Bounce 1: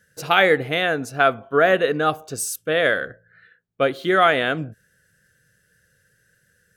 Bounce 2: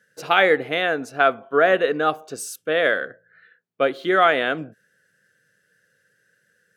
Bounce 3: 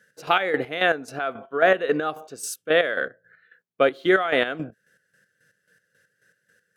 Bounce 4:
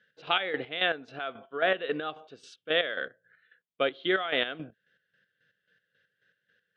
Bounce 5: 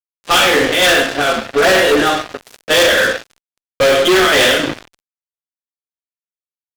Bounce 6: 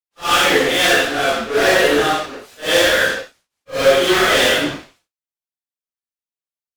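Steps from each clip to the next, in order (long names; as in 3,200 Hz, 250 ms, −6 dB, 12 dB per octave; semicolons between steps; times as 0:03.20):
high-pass filter 230 Hz 12 dB per octave; high-shelf EQ 6,300 Hz −9.5 dB
brickwall limiter −9 dBFS, peak gain reduction 7 dB; square-wave tremolo 3.7 Hz, depth 65%, duty 40%; level +2.5 dB
transistor ladder low-pass 3,800 Hz, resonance 60%; level +1.5 dB
coupled-rooms reverb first 0.58 s, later 4.7 s, from −28 dB, DRR −7 dB; fuzz pedal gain 27 dB, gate −36 dBFS; level +4.5 dB
random phases in long frames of 200 ms; level −2.5 dB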